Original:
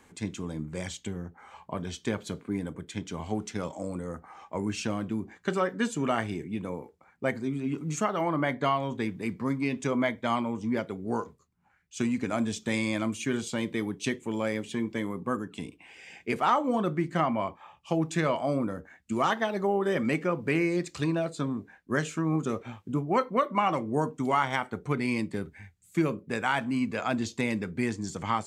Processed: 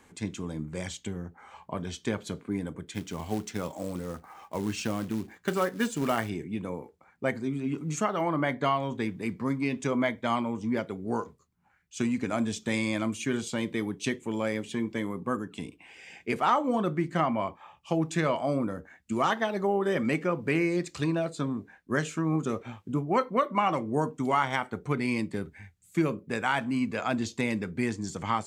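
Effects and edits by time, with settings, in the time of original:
2.94–6.29 s: short-mantissa float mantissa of 2-bit

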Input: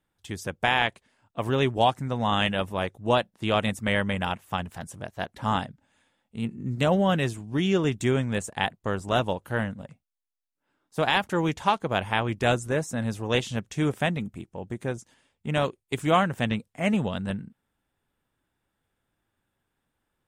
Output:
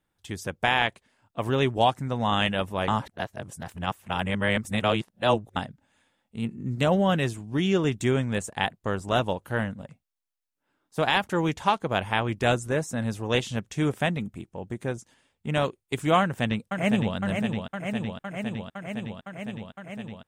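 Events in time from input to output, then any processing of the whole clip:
2.88–5.56 s: reverse
16.20–17.16 s: echo throw 510 ms, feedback 80%, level -5 dB

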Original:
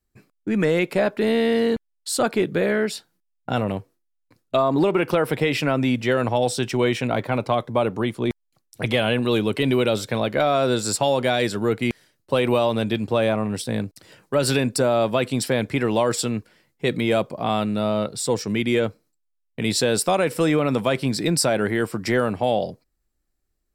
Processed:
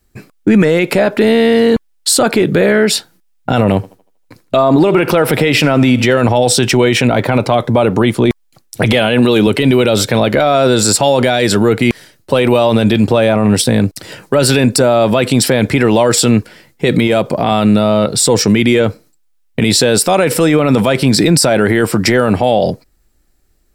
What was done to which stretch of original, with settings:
3.75–6.21 s: thinning echo 79 ms, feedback 40%, high-pass 200 Hz, level -20.5 dB
8.93–9.47 s: high-pass 120 Hz
17.07–17.52 s: compression 4:1, threshold -25 dBFS
whole clip: band-stop 1.1 kHz, Q 18; loudness maximiser +19 dB; trim -1 dB

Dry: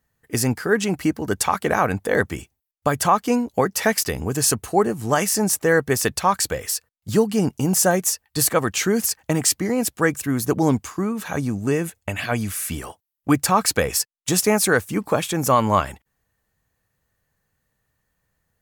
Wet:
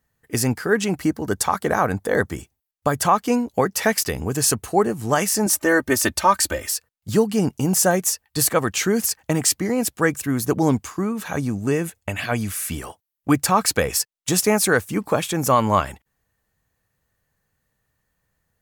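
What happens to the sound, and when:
0.91–3.02 s: dynamic bell 2.6 kHz, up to -7 dB, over -45 dBFS
5.46–6.69 s: comb 3.3 ms, depth 81%

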